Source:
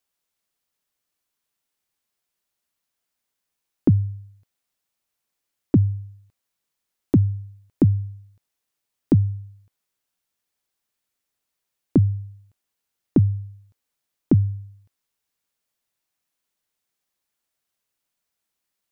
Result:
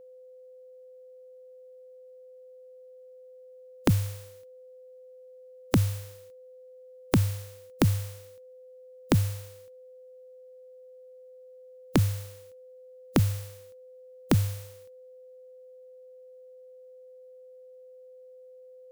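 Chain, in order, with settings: spectral contrast lowered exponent 0.45; whine 510 Hz -42 dBFS; gain -5.5 dB

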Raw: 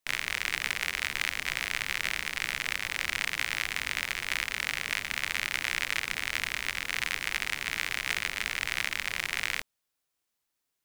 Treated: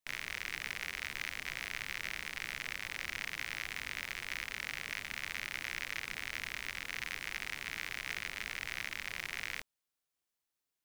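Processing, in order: soft clip -16.5 dBFS, distortion -14 dB; gain -6.5 dB

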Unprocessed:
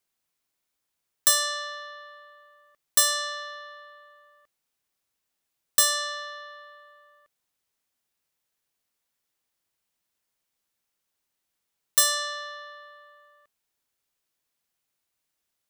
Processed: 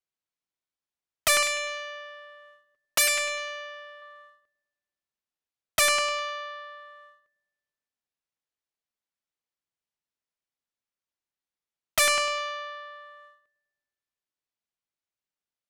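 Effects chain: 1.42–4.02 comb 7.2 ms, depth 50%; gate -56 dBFS, range -16 dB; dark delay 0.101 s, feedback 58%, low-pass 840 Hz, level -12 dB; soft clip -14.5 dBFS, distortion -13 dB; air absorption 55 m; Doppler distortion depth 0.93 ms; gain +5.5 dB

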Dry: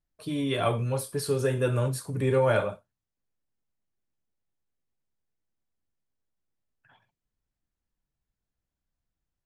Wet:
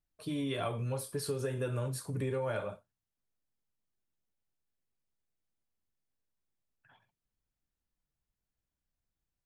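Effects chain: compressor 5:1, threshold -28 dBFS, peak gain reduction 9 dB; gain -3.5 dB

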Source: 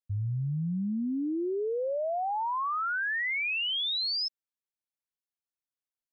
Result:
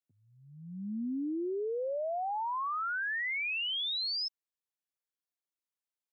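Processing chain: steep high-pass 210 Hz 36 dB/oct; gain -3.5 dB

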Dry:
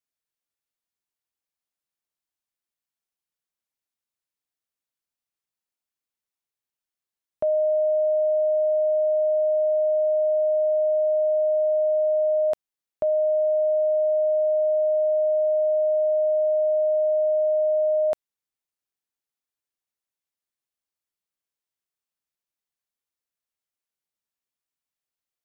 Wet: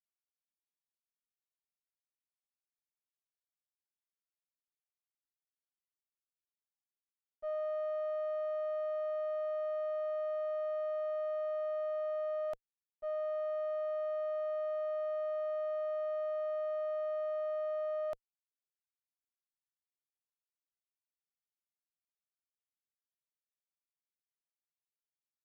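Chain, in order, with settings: one diode to ground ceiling -23 dBFS; notch 480 Hz, Q 12; expander -15 dBFS

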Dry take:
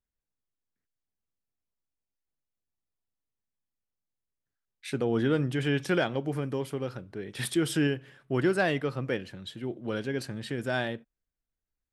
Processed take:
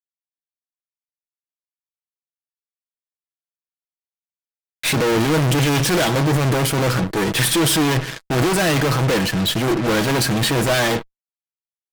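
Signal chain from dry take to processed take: fuzz box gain 51 dB, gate -55 dBFS; added harmonics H 2 -19 dB, 3 -11 dB, 7 -33 dB, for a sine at -9.5 dBFS; comb 6.2 ms, depth 34%; tube stage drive 13 dB, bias 0.75; gain +4.5 dB

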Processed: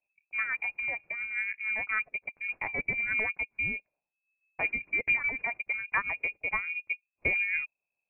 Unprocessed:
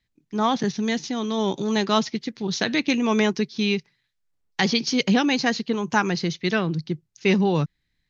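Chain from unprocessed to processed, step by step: rotary speaker horn 7 Hz; transient shaper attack +3 dB, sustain -6 dB; inverted band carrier 2600 Hz; gain -8 dB

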